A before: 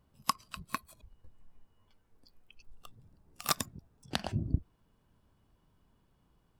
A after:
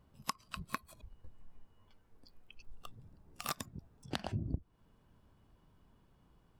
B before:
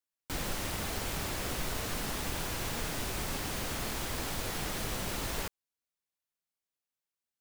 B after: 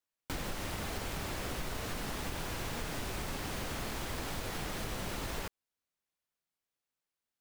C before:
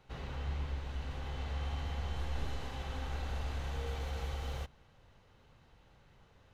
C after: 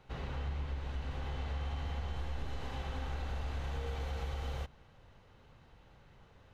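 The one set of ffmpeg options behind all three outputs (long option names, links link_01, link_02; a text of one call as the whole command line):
ffmpeg -i in.wav -af "acompressor=threshold=-37dB:ratio=4,highshelf=frequency=4500:gain=-5.5,volume=3dB" out.wav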